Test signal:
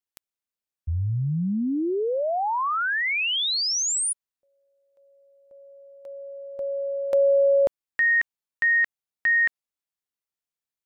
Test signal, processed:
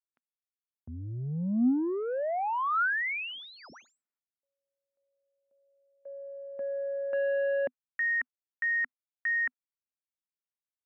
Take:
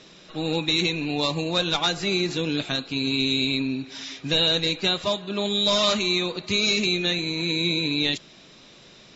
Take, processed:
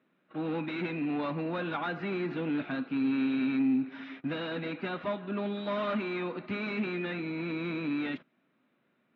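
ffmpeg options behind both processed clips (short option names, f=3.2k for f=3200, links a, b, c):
-af "agate=range=-18dB:threshold=-44dB:ratio=16:release=106:detection=peak,aresample=16000,asoftclip=type=tanh:threshold=-22.5dB,aresample=44100,highpass=150,equalizer=f=250:t=q:w=4:g=9,equalizer=f=440:t=q:w=4:g=-3,equalizer=f=1.4k:t=q:w=4:g=5,lowpass=f=2.3k:w=0.5412,lowpass=f=2.3k:w=1.3066,volume=-3.5dB"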